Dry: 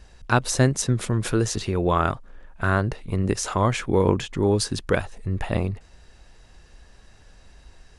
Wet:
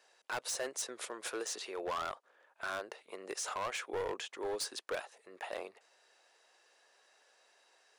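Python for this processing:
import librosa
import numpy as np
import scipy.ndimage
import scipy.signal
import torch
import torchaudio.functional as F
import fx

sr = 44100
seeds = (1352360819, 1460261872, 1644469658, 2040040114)

y = scipy.signal.sosfilt(scipy.signal.butter(4, 460.0, 'highpass', fs=sr, output='sos'), x)
y = np.clip(10.0 ** (23.5 / 20.0) * y, -1.0, 1.0) / 10.0 ** (23.5 / 20.0)
y = F.gain(torch.from_numpy(y), -9.0).numpy()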